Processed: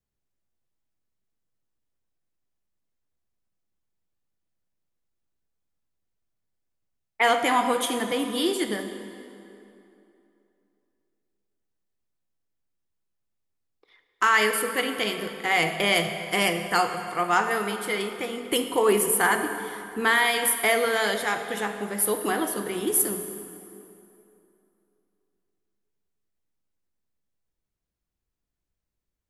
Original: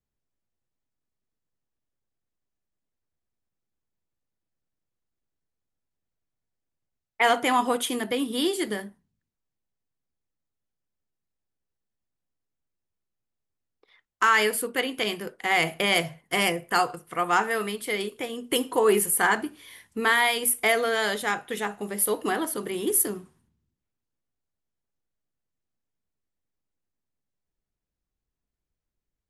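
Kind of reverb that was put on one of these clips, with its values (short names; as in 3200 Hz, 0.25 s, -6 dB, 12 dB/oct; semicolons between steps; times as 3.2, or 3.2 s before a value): plate-style reverb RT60 2.9 s, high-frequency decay 0.7×, DRR 6.5 dB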